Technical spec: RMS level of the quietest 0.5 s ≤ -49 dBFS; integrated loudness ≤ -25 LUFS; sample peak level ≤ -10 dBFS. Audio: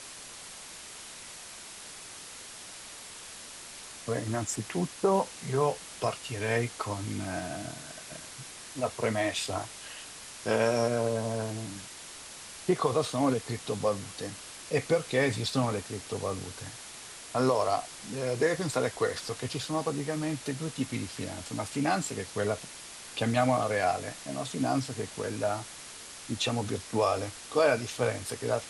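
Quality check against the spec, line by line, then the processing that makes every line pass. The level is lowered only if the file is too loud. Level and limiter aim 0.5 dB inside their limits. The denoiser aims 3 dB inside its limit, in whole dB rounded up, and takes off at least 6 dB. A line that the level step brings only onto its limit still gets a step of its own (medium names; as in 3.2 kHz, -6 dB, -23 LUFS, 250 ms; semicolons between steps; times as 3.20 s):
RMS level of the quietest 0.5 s -46 dBFS: fail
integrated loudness -31.0 LUFS: pass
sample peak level -11.5 dBFS: pass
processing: noise reduction 6 dB, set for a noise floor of -46 dBFS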